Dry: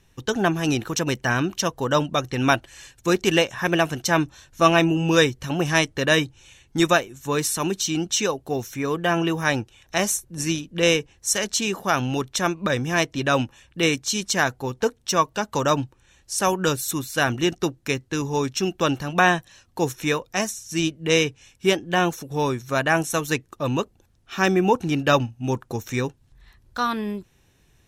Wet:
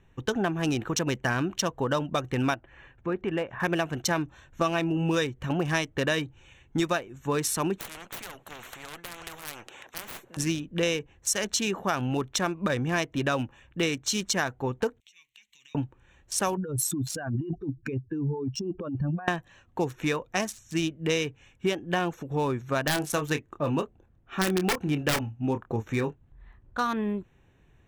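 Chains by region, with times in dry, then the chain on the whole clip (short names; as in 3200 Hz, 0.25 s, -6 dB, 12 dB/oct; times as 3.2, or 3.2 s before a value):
2.54–3.6 LPF 2200 Hz + compressor 1.5:1, threshold -38 dBFS
7.78–10.37 HPF 390 Hz + tube stage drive 20 dB, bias 0.75 + spectral compressor 10:1
15–15.75 G.711 law mismatch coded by mu + elliptic high-pass 2200 Hz + compressor 8:1, threshold -43 dBFS
16.57–19.28 spectral contrast raised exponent 2.4 + negative-ratio compressor -30 dBFS
22.82–26.81 wrapped overs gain 10 dB + doubler 27 ms -8.5 dB + mismatched tape noise reduction decoder only
whole clip: Wiener smoothing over 9 samples; compressor 6:1, threshold -23 dBFS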